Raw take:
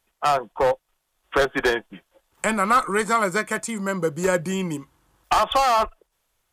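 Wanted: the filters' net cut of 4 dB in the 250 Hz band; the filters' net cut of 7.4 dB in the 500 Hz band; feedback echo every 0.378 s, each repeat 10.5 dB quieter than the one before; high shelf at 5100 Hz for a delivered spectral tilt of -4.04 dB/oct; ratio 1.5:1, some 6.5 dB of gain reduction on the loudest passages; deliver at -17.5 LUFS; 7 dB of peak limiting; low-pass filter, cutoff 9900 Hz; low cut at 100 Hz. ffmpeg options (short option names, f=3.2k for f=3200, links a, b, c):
-af "highpass=100,lowpass=9.9k,equalizer=f=250:t=o:g=-3,equalizer=f=500:t=o:g=-8.5,highshelf=f=5.1k:g=-4,acompressor=threshold=-34dB:ratio=1.5,alimiter=limit=-22dB:level=0:latency=1,aecho=1:1:378|756|1134:0.299|0.0896|0.0269,volume=15.5dB"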